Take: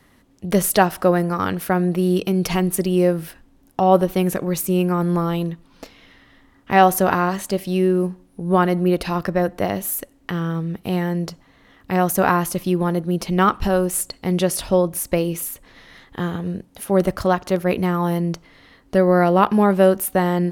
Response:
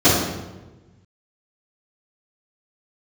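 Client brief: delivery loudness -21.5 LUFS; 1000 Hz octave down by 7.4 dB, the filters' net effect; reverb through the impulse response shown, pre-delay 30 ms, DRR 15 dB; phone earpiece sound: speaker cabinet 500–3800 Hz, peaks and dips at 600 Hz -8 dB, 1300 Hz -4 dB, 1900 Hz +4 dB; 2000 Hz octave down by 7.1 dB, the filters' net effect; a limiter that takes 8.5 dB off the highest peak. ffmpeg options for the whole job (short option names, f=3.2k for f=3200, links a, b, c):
-filter_complex "[0:a]equalizer=f=1k:t=o:g=-5,equalizer=f=2k:t=o:g=-8.5,alimiter=limit=-12dB:level=0:latency=1,asplit=2[a][b];[1:a]atrim=start_sample=2205,adelay=30[c];[b][c]afir=irnorm=-1:irlink=0,volume=-39.5dB[d];[a][d]amix=inputs=2:normalize=0,highpass=500,equalizer=f=600:t=q:w=4:g=-8,equalizer=f=1.3k:t=q:w=4:g=-4,equalizer=f=1.9k:t=q:w=4:g=4,lowpass=f=3.8k:w=0.5412,lowpass=f=3.8k:w=1.3066,volume=10.5dB"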